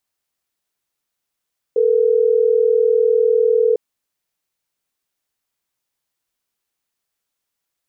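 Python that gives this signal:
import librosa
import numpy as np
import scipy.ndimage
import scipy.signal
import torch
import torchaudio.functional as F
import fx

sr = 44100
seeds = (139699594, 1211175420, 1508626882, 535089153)

y = fx.call_progress(sr, length_s=3.12, kind='ringback tone', level_db=-14.5)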